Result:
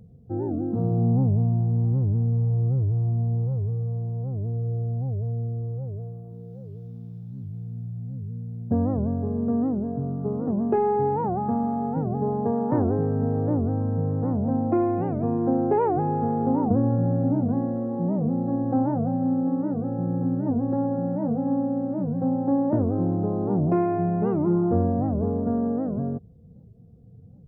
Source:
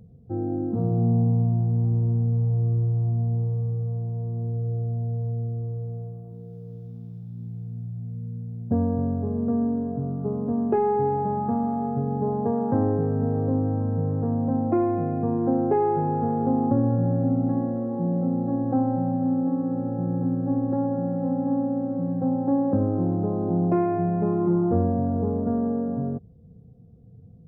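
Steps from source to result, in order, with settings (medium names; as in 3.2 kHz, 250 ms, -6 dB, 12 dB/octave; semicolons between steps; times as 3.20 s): warped record 78 rpm, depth 250 cents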